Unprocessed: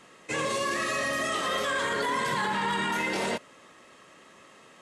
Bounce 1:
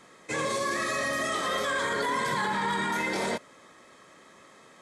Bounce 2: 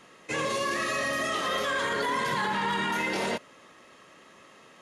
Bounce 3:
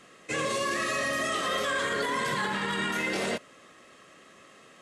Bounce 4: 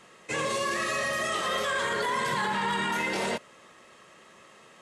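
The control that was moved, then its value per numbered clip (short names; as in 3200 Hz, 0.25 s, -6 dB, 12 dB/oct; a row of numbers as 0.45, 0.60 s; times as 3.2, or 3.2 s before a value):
notch, frequency: 2800, 8000, 910, 280 Hz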